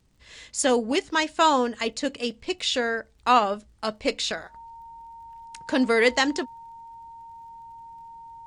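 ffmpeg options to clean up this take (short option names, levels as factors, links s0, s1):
-af "adeclick=t=4,bandreject=f=920:w=30"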